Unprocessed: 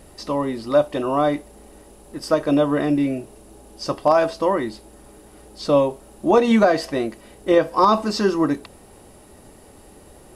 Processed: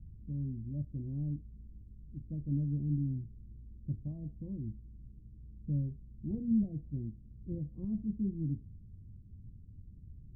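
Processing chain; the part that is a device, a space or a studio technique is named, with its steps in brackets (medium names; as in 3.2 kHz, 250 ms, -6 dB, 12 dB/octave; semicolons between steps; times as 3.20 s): the neighbour's flat through the wall (low-pass 160 Hz 24 dB/octave; peaking EQ 100 Hz +6 dB 0.4 oct)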